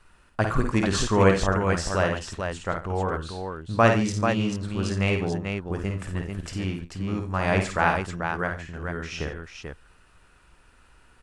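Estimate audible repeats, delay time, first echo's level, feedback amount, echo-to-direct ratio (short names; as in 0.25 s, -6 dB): 4, 52 ms, -5.5 dB, no steady repeat, -1.5 dB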